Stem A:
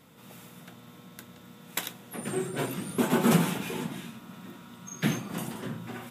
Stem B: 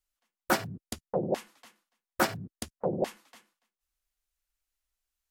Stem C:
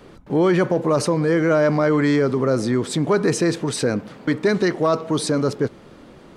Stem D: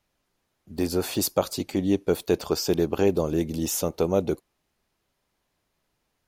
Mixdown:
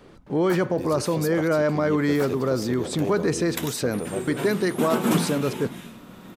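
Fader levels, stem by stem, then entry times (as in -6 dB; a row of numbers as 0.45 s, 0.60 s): 0.0 dB, -8.0 dB, -4.5 dB, -9.5 dB; 1.80 s, 0.00 s, 0.00 s, 0.00 s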